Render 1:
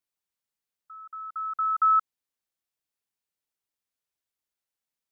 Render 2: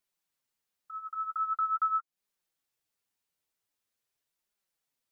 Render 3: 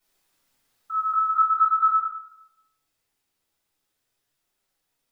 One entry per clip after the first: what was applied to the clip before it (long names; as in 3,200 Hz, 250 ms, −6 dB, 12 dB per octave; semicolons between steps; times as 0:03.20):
downward compressor 6 to 1, threshold −33 dBFS, peak gain reduction 13 dB; flanger 0.44 Hz, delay 4.6 ms, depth 8.2 ms, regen +16%; level +7 dB
speech leveller within 4 dB 0.5 s; rectangular room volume 280 cubic metres, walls mixed, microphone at 4.6 metres